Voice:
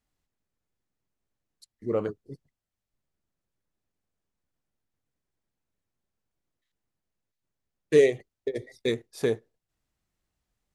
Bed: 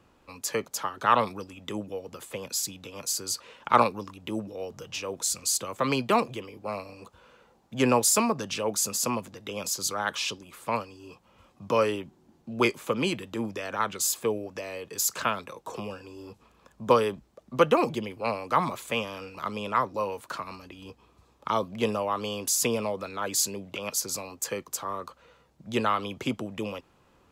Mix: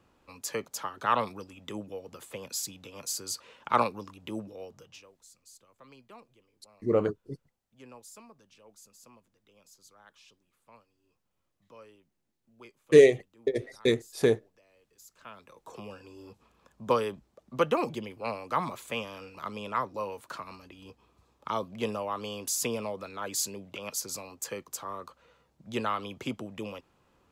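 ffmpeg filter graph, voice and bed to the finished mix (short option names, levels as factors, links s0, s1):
-filter_complex "[0:a]adelay=5000,volume=1.33[s0];[1:a]volume=8.41,afade=t=out:st=4.41:d=0.71:silence=0.0668344,afade=t=in:st=15.18:d=0.87:silence=0.0707946[s1];[s0][s1]amix=inputs=2:normalize=0"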